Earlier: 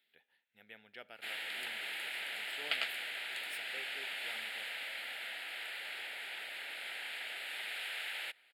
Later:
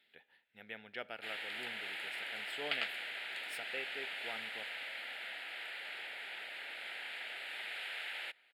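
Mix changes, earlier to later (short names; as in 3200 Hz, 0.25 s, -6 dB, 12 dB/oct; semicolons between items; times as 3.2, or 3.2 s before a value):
speech +8.0 dB; master: add LPF 3600 Hz 6 dB/oct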